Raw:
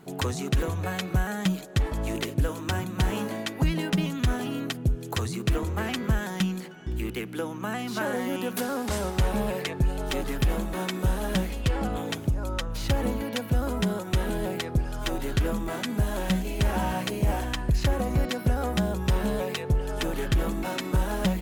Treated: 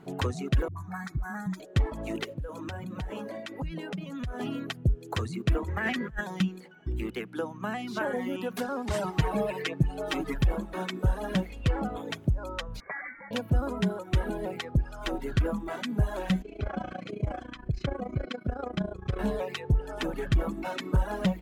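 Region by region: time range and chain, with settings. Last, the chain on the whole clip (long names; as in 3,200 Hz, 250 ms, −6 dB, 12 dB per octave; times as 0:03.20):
0:00.68–0:01.60: all-pass dispersion highs, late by 84 ms, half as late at 390 Hz + downward compressor 5 to 1, threshold −25 dBFS + phaser with its sweep stopped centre 1,200 Hz, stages 4
0:02.24–0:04.40: parametric band 550 Hz +7 dB 0.29 octaves + downward compressor 8 to 1, threshold −30 dBFS
0:05.68–0:06.21: parametric band 1,800 Hz +10.5 dB 0.42 octaves + compressor whose output falls as the input rises −27 dBFS, ratio −0.5
0:08.93–0:10.34: high-pass filter 88 Hz 6 dB per octave + comb filter 6.4 ms, depth 100%
0:12.80–0:13.31: high-pass filter 660 Hz + voice inversion scrambler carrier 2,500 Hz
0:16.42–0:19.19: high-frequency loss of the air 91 metres + notch comb filter 910 Hz + amplitude modulation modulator 28 Hz, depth 55%
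whole clip: reverb reduction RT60 1.5 s; low-pass filter 2,800 Hz 6 dB per octave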